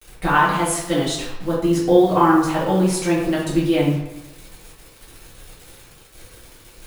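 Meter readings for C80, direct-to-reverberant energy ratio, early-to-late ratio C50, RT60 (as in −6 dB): 5.5 dB, −9.0 dB, 2.0 dB, 1.0 s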